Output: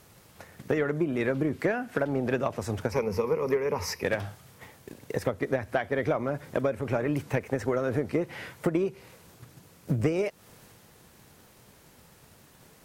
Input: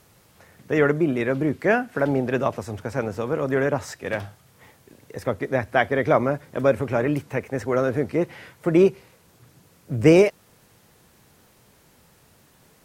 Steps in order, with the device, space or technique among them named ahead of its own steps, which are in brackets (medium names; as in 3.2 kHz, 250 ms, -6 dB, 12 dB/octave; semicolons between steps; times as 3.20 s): 2.91–4.03 s: rippled EQ curve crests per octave 0.84, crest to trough 13 dB; drum-bus smash (transient shaper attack +8 dB, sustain +3 dB; compression 10:1, threshold -22 dBFS, peak gain reduction 18.5 dB; saturation -13.5 dBFS, distortion -21 dB)